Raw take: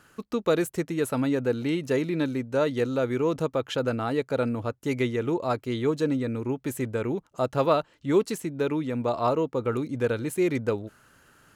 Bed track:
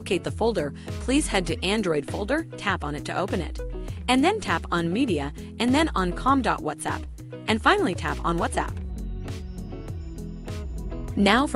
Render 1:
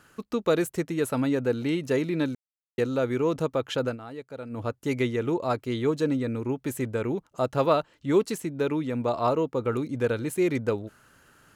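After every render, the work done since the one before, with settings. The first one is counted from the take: 2.35–2.78 s: mute; 3.85–4.62 s: dip -12.5 dB, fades 0.13 s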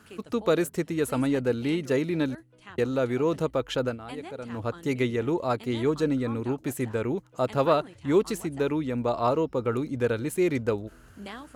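add bed track -21.5 dB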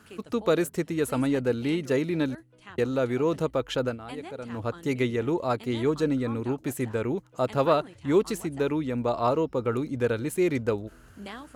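no audible change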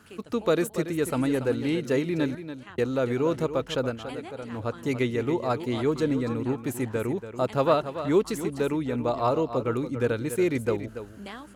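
delay 284 ms -11 dB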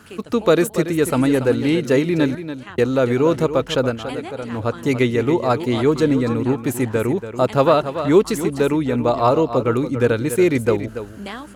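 trim +8.5 dB; peak limiter -3 dBFS, peak gain reduction 3 dB

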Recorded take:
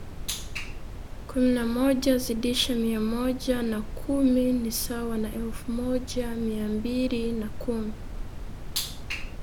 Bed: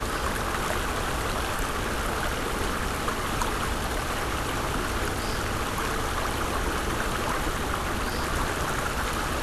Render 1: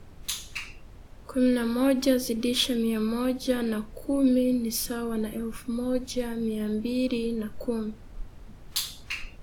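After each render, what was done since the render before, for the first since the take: noise print and reduce 9 dB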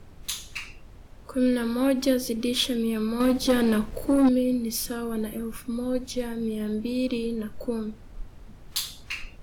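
3.20–4.29 s: waveshaping leveller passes 2; 5.02–5.61 s: peaking EQ 14 kHz +9 dB 0.45 oct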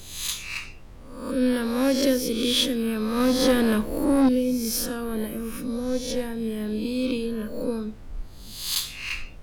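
reverse spectral sustain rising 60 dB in 0.75 s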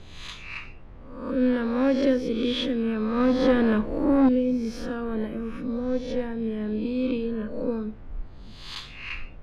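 low-pass 2.3 kHz 12 dB/octave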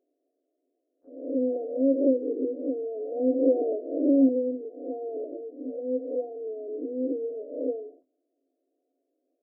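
FFT band-pass 250–740 Hz; gate -51 dBFS, range -21 dB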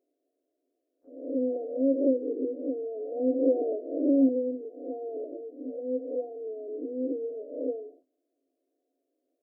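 trim -2 dB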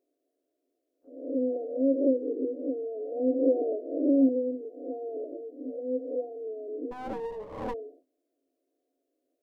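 6.91–7.74 s: comb filter that takes the minimum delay 9.1 ms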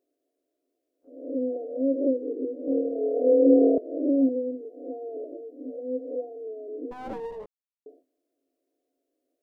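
2.65–3.78 s: flutter echo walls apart 4.4 m, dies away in 1.4 s; 7.46–7.86 s: mute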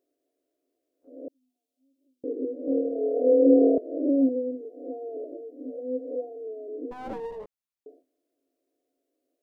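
1.28–2.24 s: inverse Chebyshev high-pass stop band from 1.3 kHz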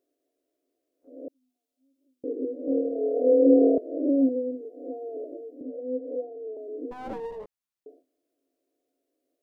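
5.61–6.57 s: steep low-pass 750 Hz

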